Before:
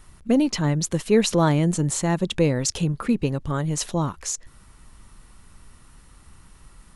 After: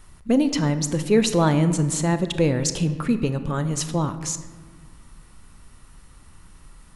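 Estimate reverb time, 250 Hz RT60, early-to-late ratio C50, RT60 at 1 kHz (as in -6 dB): 1.4 s, 2.1 s, 11.5 dB, 1.4 s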